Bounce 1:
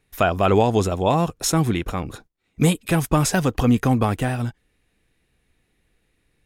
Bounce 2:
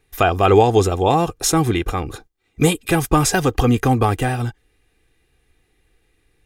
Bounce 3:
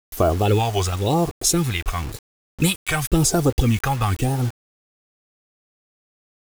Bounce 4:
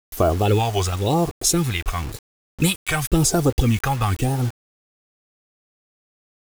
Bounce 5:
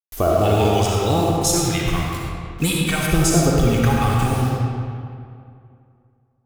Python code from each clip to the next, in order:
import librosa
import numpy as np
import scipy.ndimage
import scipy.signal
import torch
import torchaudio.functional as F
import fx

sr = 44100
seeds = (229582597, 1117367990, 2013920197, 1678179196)

y1 = x + 0.5 * np.pad(x, (int(2.5 * sr / 1000.0), 0))[:len(x)]
y1 = y1 * librosa.db_to_amplitude(3.0)
y2 = fx.phaser_stages(y1, sr, stages=2, low_hz=280.0, high_hz=2400.0, hz=0.96, feedback_pct=25)
y2 = fx.wow_flutter(y2, sr, seeds[0], rate_hz=2.1, depth_cents=130.0)
y2 = fx.quant_dither(y2, sr, seeds[1], bits=6, dither='none')
y3 = y2
y4 = fx.rev_freeverb(y3, sr, rt60_s=2.4, hf_ratio=0.65, predelay_ms=20, drr_db=-3.0)
y4 = y4 * librosa.db_to_amplitude(-2.0)